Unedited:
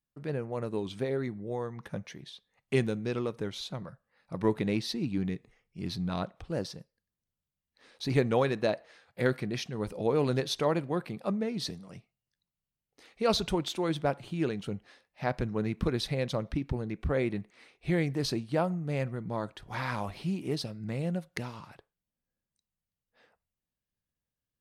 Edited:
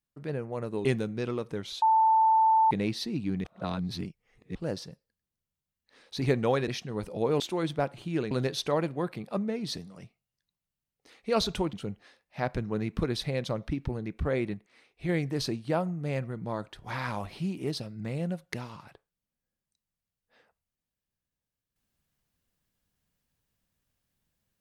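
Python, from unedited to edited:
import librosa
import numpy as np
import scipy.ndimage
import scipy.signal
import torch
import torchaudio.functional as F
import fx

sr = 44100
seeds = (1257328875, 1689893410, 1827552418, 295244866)

y = fx.edit(x, sr, fx.cut(start_s=0.85, length_s=1.88),
    fx.bleep(start_s=3.7, length_s=0.89, hz=886.0, db=-18.5),
    fx.reverse_span(start_s=5.32, length_s=1.11),
    fx.cut(start_s=8.56, length_s=0.96),
    fx.move(start_s=13.66, length_s=0.91, to_s=10.24),
    fx.clip_gain(start_s=17.38, length_s=0.55, db=-4.0), tone=tone)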